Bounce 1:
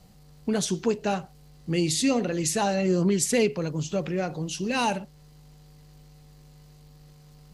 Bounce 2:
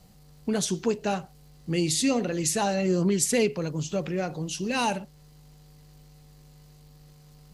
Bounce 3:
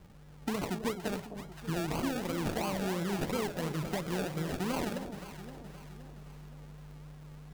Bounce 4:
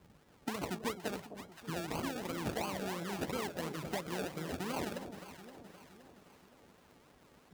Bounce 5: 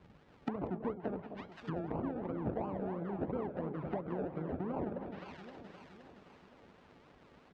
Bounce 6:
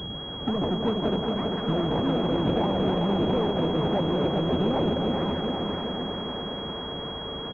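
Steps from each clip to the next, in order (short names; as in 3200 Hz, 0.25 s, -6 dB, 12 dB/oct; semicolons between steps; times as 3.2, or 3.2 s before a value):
high shelf 7800 Hz +4 dB; gain -1 dB
compressor, threshold -31 dBFS, peak gain reduction 12 dB; decimation with a swept rate 34×, swing 60% 2.9 Hz; echo with dull and thin repeats by turns 0.26 s, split 850 Hz, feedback 68%, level -8 dB
HPF 65 Hz; notches 50/100/150 Hz; harmonic-percussive split percussive +8 dB; gain -8.5 dB
LPF 3600 Hz 12 dB/oct; treble ducked by the level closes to 790 Hz, closed at -36 dBFS; echo 0.189 s -18 dB; gain +2 dB
power-law curve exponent 0.5; feedback echo 0.402 s, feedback 59%, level -4.5 dB; pulse-width modulation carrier 3300 Hz; gain +5 dB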